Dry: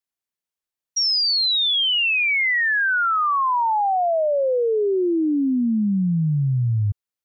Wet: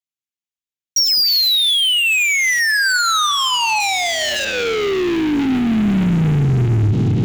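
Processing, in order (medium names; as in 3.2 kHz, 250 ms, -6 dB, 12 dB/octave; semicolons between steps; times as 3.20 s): de-hum 291.1 Hz, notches 39; 1.27–2.60 s: painted sound noise 1.8–3.9 kHz -42 dBFS; feedback echo behind a low-pass 230 ms, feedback 84%, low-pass 500 Hz, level -11.5 dB; waveshaping leveller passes 5; 3.80–4.45 s: treble shelf 5 kHz +12 dB; reverberation RT60 1.0 s, pre-delay 3 ms, DRR 16.5 dB; peak limiter -11 dBFS, peak gain reduction 11 dB; band-stop 520 Hz, Q 15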